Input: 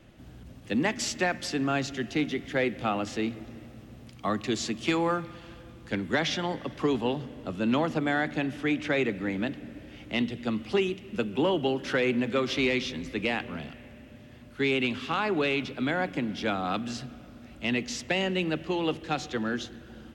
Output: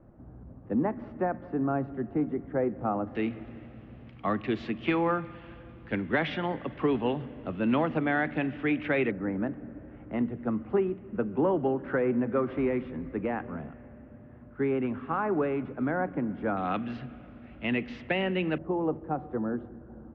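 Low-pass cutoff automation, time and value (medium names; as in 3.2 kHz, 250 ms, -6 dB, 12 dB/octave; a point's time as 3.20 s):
low-pass 24 dB/octave
1.2 kHz
from 3.15 s 2.7 kHz
from 9.11 s 1.5 kHz
from 16.57 s 2.6 kHz
from 18.58 s 1.1 kHz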